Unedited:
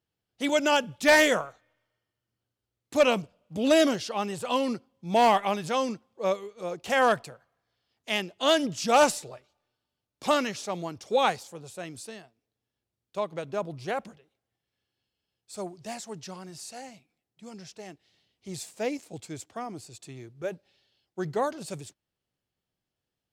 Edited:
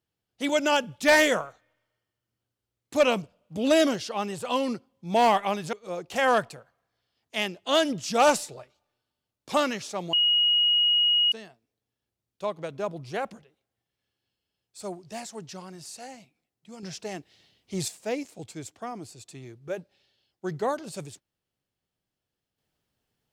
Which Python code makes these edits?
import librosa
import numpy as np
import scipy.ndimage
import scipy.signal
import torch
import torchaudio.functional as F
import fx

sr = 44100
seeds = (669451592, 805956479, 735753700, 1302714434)

y = fx.edit(x, sr, fx.cut(start_s=5.73, length_s=0.74),
    fx.bleep(start_s=10.87, length_s=1.19, hz=2890.0, db=-18.5),
    fx.clip_gain(start_s=17.57, length_s=1.05, db=7.5), tone=tone)